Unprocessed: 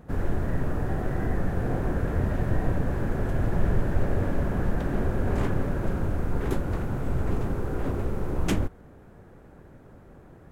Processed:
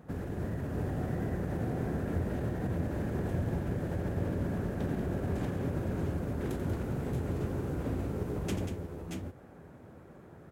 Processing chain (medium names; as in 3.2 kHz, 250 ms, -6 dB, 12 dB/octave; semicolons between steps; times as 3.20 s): peak limiter -20 dBFS, peak gain reduction 8.5 dB; on a send: multi-tap echo 88/188/625/637 ms -10.5/-8.5/-8.5/-7 dB; on the sum: dynamic bell 1.2 kHz, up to -6 dB, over -49 dBFS, Q 0.8; high-pass 80 Hz 12 dB/octave; trim -3 dB